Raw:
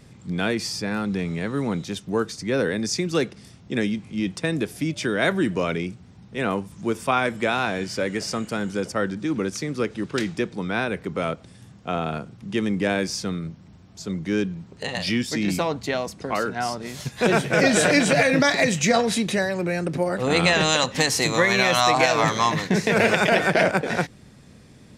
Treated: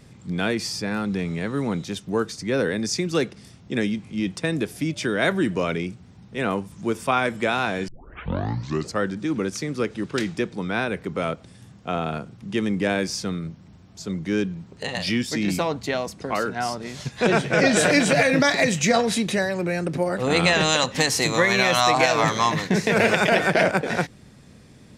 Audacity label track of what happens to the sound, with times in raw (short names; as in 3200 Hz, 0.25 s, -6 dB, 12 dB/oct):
7.880000	7.880000	tape start 1.14 s
16.840000	17.770000	LPF 7600 Hz